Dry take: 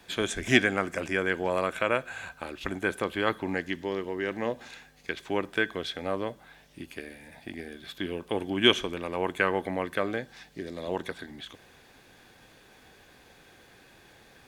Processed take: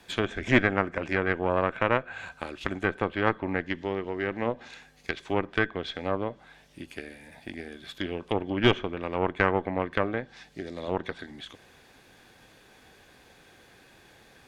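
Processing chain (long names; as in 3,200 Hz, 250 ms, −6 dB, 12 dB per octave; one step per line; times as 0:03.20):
harmonic generator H 6 −15 dB, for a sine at −3.5 dBFS
treble cut that deepens with the level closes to 2,100 Hz, closed at −24.5 dBFS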